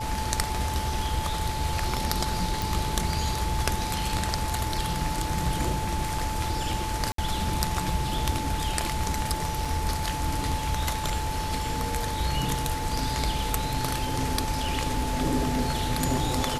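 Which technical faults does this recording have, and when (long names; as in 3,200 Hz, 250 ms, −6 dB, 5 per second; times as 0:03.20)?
whistle 870 Hz −32 dBFS
0:02.62: click
0:07.12–0:07.18: drop-out 63 ms
0:09.65: drop-out 4.3 ms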